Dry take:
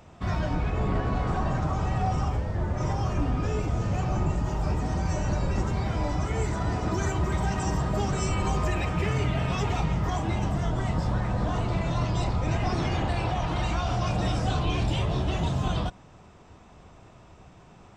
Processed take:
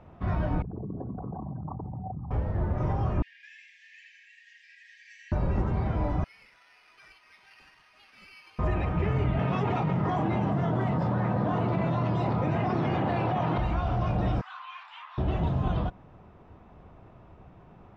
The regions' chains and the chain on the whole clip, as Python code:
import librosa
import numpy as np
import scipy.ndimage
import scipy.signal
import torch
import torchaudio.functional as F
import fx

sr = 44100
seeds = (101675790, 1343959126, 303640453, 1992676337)

y = fx.chain(x, sr, fx.envelope_sharpen(power=3.0),
    fx.highpass(hz=240.0, slope=12),
    fx.env_flatten(amount_pct=70), at=(0.62, 2.31))
y = fx.chain(y, sr, fx.brickwall_highpass(low_hz=1600.0),
    fx.echo_single(ms=83, db=-5.0), at=(3.22, 5.32))
y = fx.chain(y, sr, fx.ladder_bandpass(hz=2800.0, resonance_pct=60),
    fx.resample_bad(factor=6, down='none', up='zero_stuff'), at=(6.24, 8.59))
y = fx.chain(y, sr, fx.highpass(hz=120.0, slope=24),
    fx.env_flatten(amount_pct=100), at=(9.39, 13.58))
y = fx.chain(y, sr, fx.steep_highpass(hz=1000.0, slope=48),
    fx.high_shelf(hz=4400.0, db=-11.0), at=(14.41, 15.18))
y = scipy.signal.sosfilt(scipy.signal.butter(2, 3200.0, 'lowpass', fs=sr, output='sos'), y)
y = fx.high_shelf(y, sr, hz=2100.0, db=-10.5)